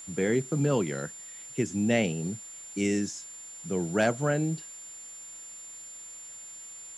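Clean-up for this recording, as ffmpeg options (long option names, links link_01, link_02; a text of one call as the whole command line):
ffmpeg -i in.wav -af "bandreject=frequency=7200:width=30,afwtdn=0.002" out.wav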